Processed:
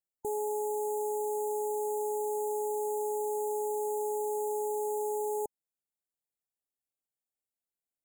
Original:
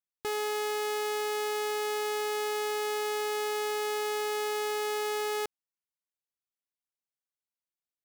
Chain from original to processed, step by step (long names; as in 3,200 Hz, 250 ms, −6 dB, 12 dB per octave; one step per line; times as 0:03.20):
linear-phase brick-wall band-stop 900–6,700 Hz